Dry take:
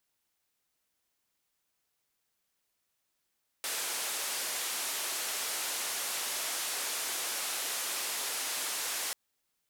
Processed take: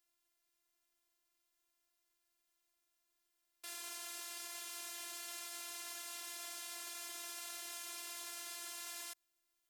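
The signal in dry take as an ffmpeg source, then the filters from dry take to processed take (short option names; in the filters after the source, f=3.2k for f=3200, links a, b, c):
-f lavfi -i "anoisesrc=c=white:d=5.49:r=44100:seed=1,highpass=f=420,lowpass=f=12000,volume=-27.4dB"
-af "alimiter=level_in=12dB:limit=-24dB:level=0:latency=1:release=35,volume=-12dB,afftfilt=real='hypot(re,im)*cos(PI*b)':imag='0':win_size=512:overlap=0.75"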